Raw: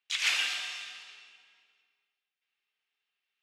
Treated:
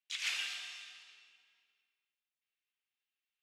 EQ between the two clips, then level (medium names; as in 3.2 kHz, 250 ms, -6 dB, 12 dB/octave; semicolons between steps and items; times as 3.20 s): peaking EQ 170 Hz -5 dB 0.45 oct; peaking EQ 670 Hz -5 dB 2.4 oct; -7.5 dB